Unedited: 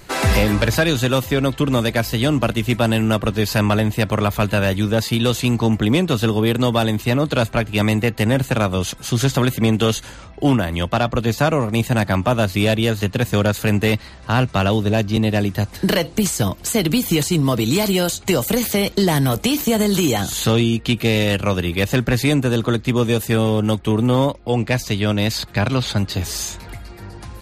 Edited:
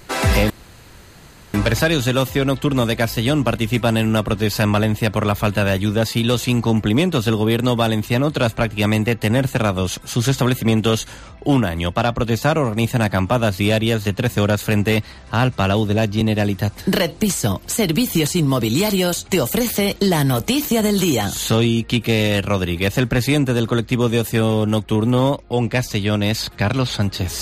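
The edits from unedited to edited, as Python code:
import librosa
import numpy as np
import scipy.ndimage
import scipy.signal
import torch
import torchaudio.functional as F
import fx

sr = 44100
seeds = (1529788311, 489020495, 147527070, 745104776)

y = fx.edit(x, sr, fx.insert_room_tone(at_s=0.5, length_s=1.04), tone=tone)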